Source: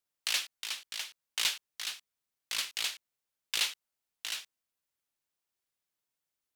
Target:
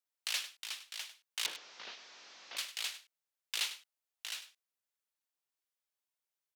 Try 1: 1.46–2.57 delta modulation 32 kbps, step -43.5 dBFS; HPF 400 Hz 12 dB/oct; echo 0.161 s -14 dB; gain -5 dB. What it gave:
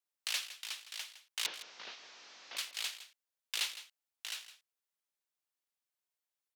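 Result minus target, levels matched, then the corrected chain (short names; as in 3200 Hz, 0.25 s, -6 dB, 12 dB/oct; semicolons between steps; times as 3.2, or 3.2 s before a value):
echo 61 ms late
1.46–2.57 delta modulation 32 kbps, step -43.5 dBFS; HPF 400 Hz 12 dB/oct; echo 0.1 s -14 dB; gain -5 dB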